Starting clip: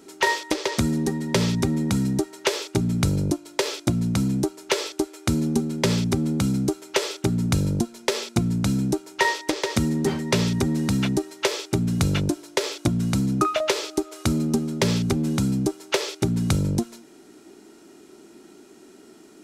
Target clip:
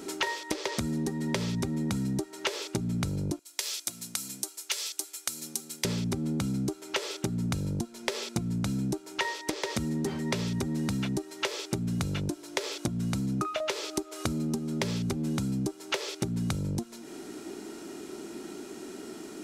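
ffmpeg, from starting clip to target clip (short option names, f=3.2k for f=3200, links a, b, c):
-filter_complex "[0:a]asettb=1/sr,asplit=3[a][b][c];[a]atrim=end=3.394[d];[b]atrim=start=3.39:end=5.85,asetpts=PTS-STARTPTS,afade=t=in:d=0.004:c=qsin,afade=t=out:st=2.456:d=0.004:c=qsin,aderivative[e];[c]atrim=start=5.846[f];[d][e]acrossfade=d=0.004:c1=hsin:c2=qsin[g];[g][f]acrossfade=d=0.004:c1=qsin:c2=hsin,acompressor=threshold=-35dB:ratio=12,volume=7dB"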